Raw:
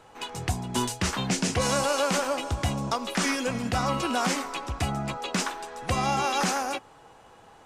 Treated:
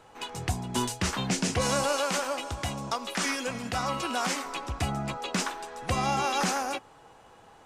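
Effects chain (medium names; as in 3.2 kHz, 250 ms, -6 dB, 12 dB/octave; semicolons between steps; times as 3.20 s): 1.97–4.46 s: bass shelf 470 Hz -6 dB; trim -1.5 dB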